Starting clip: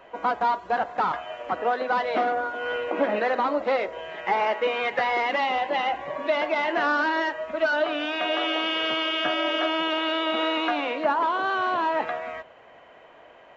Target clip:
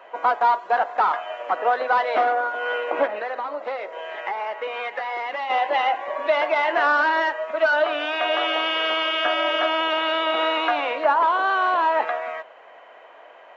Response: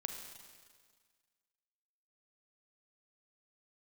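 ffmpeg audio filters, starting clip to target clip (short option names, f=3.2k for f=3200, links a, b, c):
-filter_complex "[0:a]highpass=570,highshelf=f=2.7k:g=-8,asplit=3[a][b][c];[a]afade=t=out:st=3.06:d=0.02[d];[b]acompressor=threshold=-33dB:ratio=5,afade=t=in:st=3.06:d=0.02,afade=t=out:st=5.49:d=0.02[e];[c]afade=t=in:st=5.49:d=0.02[f];[d][e][f]amix=inputs=3:normalize=0,volume=6.5dB"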